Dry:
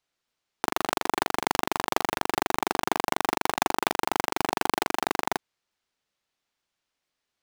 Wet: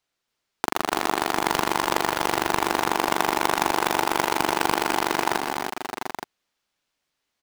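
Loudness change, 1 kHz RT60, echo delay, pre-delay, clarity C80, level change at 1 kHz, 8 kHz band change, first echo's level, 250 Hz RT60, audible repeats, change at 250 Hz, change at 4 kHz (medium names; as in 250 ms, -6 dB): +3.5 dB, no reverb, 112 ms, no reverb, no reverb, +4.0 dB, +4.0 dB, -14.5 dB, no reverb, 5, +3.5 dB, +4.0 dB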